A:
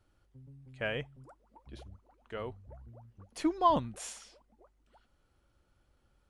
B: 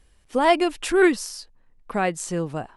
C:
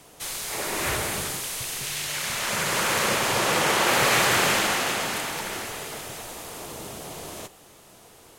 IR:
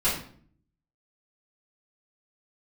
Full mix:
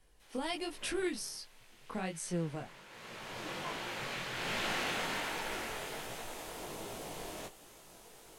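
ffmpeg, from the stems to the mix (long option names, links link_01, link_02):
-filter_complex "[0:a]volume=-17.5dB[link_01];[1:a]bandreject=frequency=7200:width=6,acrossover=split=190|3000[link_02][link_03][link_04];[link_03]acompressor=threshold=-32dB:ratio=4[link_05];[link_02][link_05][link_04]amix=inputs=3:normalize=0,volume=-4dB[link_06];[2:a]acrossover=split=4000[link_07][link_08];[link_08]acompressor=threshold=-43dB:ratio=4:attack=1:release=60[link_09];[link_07][link_09]amix=inputs=2:normalize=0,asubboost=boost=3:cutoff=55,acrossover=split=240|3000[link_10][link_11][link_12];[link_11]acompressor=threshold=-30dB:ratio=3[link_13];[link_10][link_13][link_12]amix=inputs=3:normalize=0,volume=-2dB,afade=type=in:start_time=2.89:duration=0.6:silence=0.237137,afade=type=in:start_time=4.33:duration=0.39:silence=0.398107[link_14];[link_01][link_06][link_14]amix=inputs=3:normalize=0,equalizer=frequency=71:width=2.4:gain=-11.5,bandreject=frequency=1200:width=19,flanger=delay=17:depth=6.1:speed=1.3"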